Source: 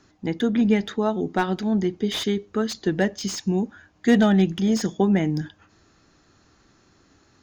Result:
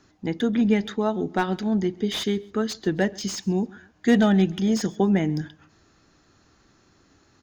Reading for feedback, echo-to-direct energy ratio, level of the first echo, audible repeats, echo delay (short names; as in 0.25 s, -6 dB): 33%, -23.5 dB, -24.0 dB, 2, 0.134 s